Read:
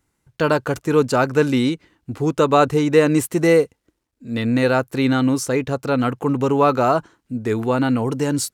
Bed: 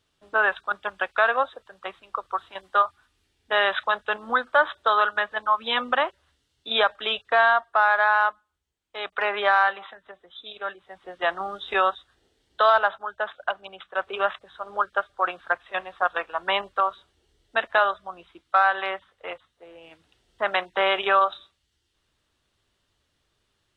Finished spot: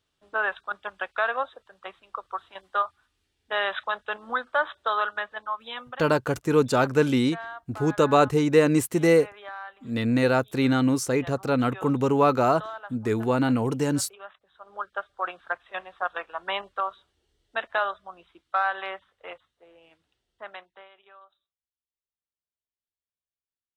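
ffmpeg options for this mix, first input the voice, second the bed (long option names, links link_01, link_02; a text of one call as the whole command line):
ffmpeg -i stem1.wav -i stem2.wav -filter_complex "[0:a]adelay=5600,volume=-4dB[link_01];[1:a]volume=9dB,afade=type=out:start_time=5.07:duration=0.98:silence=0.188365,afade=type=in:start_time=14.36:duration=0.79:silence=0.199526,afade=type=out:start_time=19.32:duration=1.57:silence=0.0421697[link_02];[link_01][link_02]amix=inputs=2:normalize=0" out.wav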